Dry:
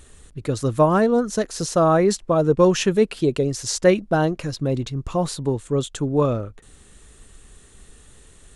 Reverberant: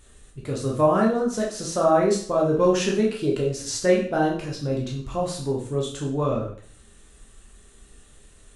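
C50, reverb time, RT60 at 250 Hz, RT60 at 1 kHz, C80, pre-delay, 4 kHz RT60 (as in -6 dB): 5.5 dB, 0.55 s, 0.50 s, 0.50 s, 10.0 dB, 5 ms, 0.45 s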